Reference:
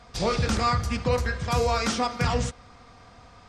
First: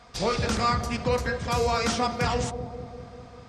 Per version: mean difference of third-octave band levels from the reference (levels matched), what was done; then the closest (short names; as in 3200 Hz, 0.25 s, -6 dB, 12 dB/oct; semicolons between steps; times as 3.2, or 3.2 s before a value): 2.5 dB: low shelf 130 Hz -6 dB; on a send: analogue delay 0.197 s, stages 1024, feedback 68%, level -7.5 dB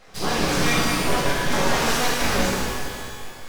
11.5 dB: full-wave rectifier; shimmer reverb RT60 2.1 s, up +12 st, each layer -8 dB, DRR -6.5 dB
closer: first